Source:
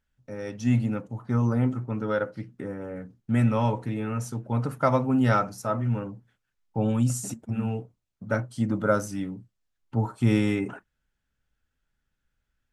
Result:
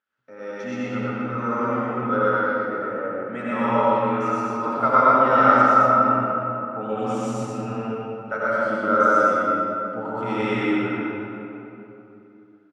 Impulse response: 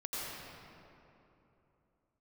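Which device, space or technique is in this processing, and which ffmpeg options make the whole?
station announcement: -filter_complex "[0:a]highpass=350,lowpass=4k,equalizer=f=1.3k:t=o:w=0.36:g=10,aecho=1:1:64.14|122.4:0.355|0.891[a];[1:a]atrim=start_sample=2205[b];[a][b]afir=irnorm=-1:irlink=0,volume=1.5dB"

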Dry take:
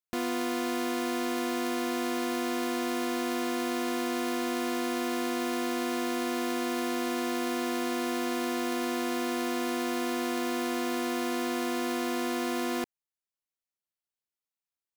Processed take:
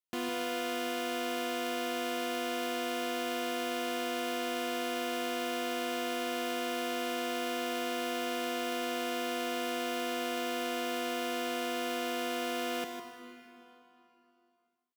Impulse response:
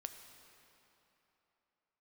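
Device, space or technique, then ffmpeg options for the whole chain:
PA in a hall: -filter_complex "[0:a]highpass=110,equalizer=f=3k:t=o:w=0.42:g=6,aecho=1:1:156:0.398[a];[1:a]atrim=start_sample=2205[b];[a][b]afir=irnorm=-1:irlink=0"

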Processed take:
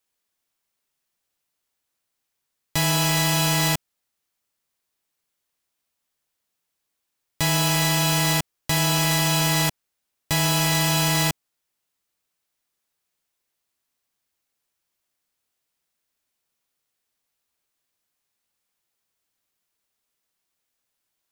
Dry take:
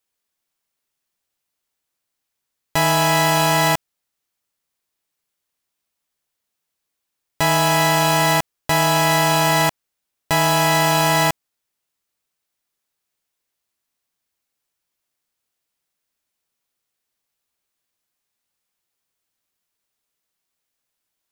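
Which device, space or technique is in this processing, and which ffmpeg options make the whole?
one-band saturation: -filter_complex "[0:a]acrossover=split=300|2500[a][b][c];[b]asoftclip=type=tanh:threshold=-27.5dB[d];[a][d][c]amix=inputs=3:normalize=0"

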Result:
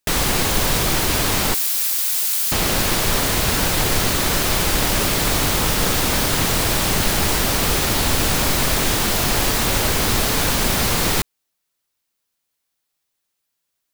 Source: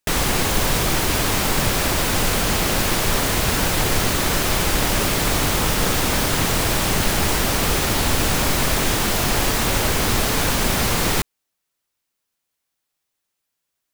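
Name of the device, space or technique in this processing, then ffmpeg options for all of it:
presence and air boost: -filter_complex "[0:a]asettb=1/sr,asplit=3[a][b][c];[a]atrim=end=1.544[d];[b]atrim=start=1.54:end=2.52,asetpts=PTS-STARTPTS,afade=t=in:d=0.004:c=qsin,afade=t=out:st=0.976:d=0.004:c=qsin,aderivative[e];[c]atrim=start=2.516[f];[d][e]acrossfade=d=0.004:c1=hsin:c2=qsin[g];[g][f]acrossfade=d=0.004:c1=qsin:c2=hsin,equalizer=f=4.2k:t=o:w=0.77:g=2,highshelf=f=9.1k:g=3.5"

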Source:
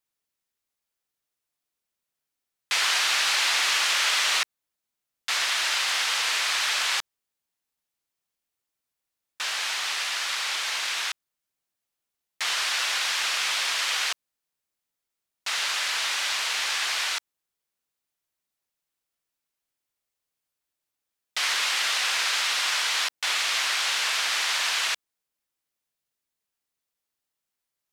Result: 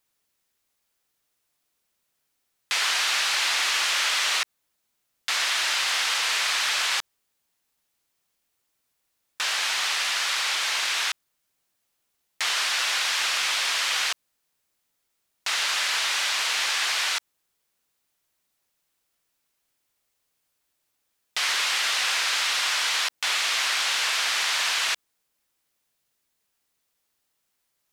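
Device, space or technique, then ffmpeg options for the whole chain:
de-esser from a sidechain: -filter_complex "[0:a]asplit=2[a][b];[b]highpass=f=6.8k:p=1,apad=whole_len=1231670[c];[a][c]sidechaincompress=threshold=-38dB:ratio=3:attack=0.96:release=47,volume=9dB"

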